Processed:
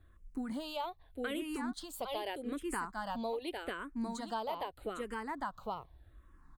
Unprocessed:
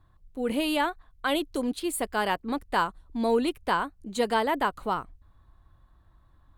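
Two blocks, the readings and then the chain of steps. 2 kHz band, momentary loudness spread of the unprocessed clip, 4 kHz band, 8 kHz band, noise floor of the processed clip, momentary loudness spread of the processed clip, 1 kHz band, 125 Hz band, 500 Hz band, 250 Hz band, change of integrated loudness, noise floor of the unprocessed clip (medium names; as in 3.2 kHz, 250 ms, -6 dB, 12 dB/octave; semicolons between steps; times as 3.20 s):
-12.0 dB, 6 LU, -11.0 dB, -10.5 dB, -62 dBFS, 5 LU, -11.0 dB, -9.5 dB, -11.0 dB, -9.5 dB, -11.5 dB, -61 dBFS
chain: delay 804 ms -5.5 dB; compression 6:1, threshold -35 dBFS, peak gain reduction 15 dB; barber-pole phaser -0.82 Hz; trim +2 dB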